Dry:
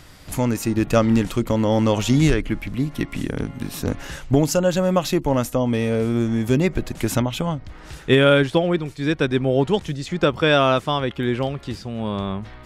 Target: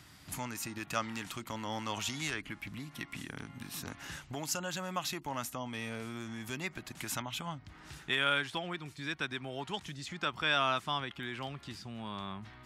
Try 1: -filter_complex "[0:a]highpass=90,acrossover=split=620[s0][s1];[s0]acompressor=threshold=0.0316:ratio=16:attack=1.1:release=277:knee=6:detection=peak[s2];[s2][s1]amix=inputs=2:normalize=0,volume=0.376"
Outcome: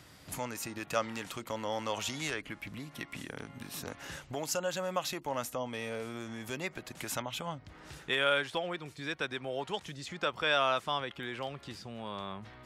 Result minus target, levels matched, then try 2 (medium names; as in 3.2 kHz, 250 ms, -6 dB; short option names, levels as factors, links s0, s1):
500 Hz band +5.5 dB
-filter_complex "[0:a]highpass=90,equalizer=f=510:w=2.1:g=-11,acrossover=split=620[s0][s1];[s0]acompressor=threshold=0.0316:ratio=16:attack=1.1:release=277:knee=6:detection=peak[s2];[s2][s1]amix=inputs=2:normalize=0,volume=0.376"